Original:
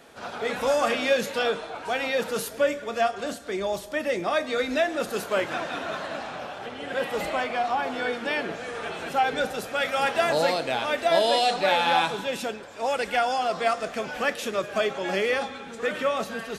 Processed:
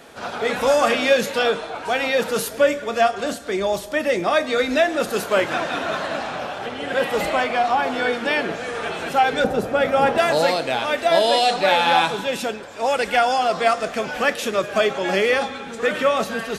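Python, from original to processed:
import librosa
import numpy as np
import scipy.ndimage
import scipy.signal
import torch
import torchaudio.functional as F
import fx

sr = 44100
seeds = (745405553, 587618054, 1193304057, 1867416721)

p1 = fx.tilt_shelf(x, sr, db=8.5, hz=1200.0, at=(9.44, 10.18))
p2 = fx.rider(p1, sr, range_db=4, speed_s=2.0)
y = p1 + F.gain(torch.from_numpy(p2), -1.0).numpy()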